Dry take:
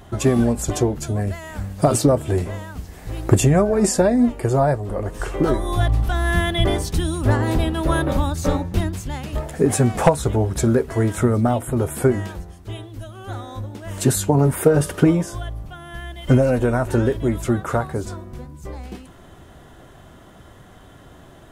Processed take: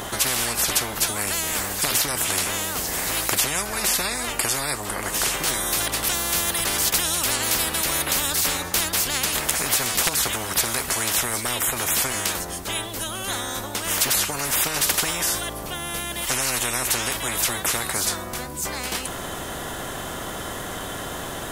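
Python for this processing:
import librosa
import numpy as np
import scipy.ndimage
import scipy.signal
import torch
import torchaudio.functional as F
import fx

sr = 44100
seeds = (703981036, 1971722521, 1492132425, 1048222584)

y = fx.high_shelf(x, sr, hz=5500.0, db=10.0)
y = fx.spectral_comp(y, sr, ratio=10.0)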